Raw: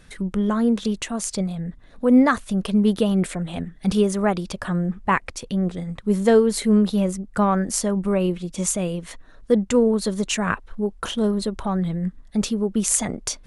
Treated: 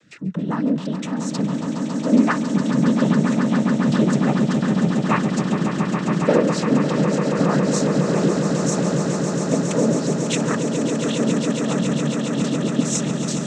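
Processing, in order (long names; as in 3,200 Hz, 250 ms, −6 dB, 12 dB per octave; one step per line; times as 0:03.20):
cochlear-implant simulation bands 12
rotating-speaker cabinet horn 5 Hz
echo that builds up and dies away 138 ms, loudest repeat 8, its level −9 dB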